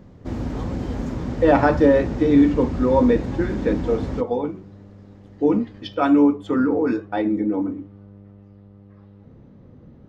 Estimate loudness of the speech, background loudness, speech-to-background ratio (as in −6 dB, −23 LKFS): −20.0 LKFS, −28.5 LKFS, 8.5 dB